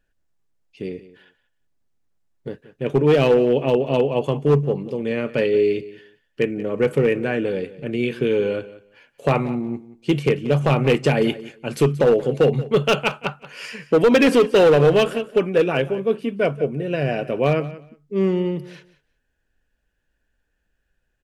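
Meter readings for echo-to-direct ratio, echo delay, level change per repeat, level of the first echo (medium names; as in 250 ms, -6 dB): -17.0 dB, 180 ms, -15.5 dB, -17.0 dB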